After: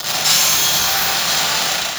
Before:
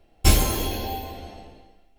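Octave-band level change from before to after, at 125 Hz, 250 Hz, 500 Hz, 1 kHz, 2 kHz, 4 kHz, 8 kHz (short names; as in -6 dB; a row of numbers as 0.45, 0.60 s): -8.5, -3.5, +3.5, +10.5, +16.0, +17.0, +15.5 dB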